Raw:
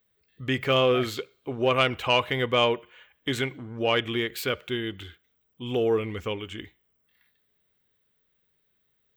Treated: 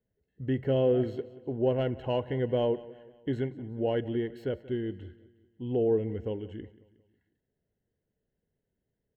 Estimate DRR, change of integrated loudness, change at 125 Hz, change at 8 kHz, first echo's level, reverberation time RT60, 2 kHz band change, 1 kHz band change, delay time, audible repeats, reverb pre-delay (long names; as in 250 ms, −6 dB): no reverb audible, −4.5 dB, 0.0 dB, below −25 dB, −19.0 dB, no reverb audible, −18.0 dB, −12.0 dB, 181 ms, 3, no reverb audible